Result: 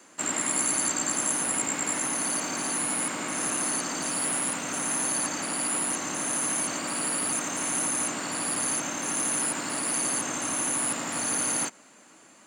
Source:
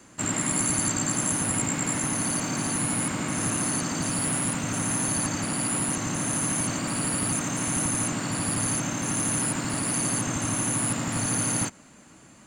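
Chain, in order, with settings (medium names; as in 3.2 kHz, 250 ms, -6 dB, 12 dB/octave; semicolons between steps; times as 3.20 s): high-pass 340 Hz 12 dB/octave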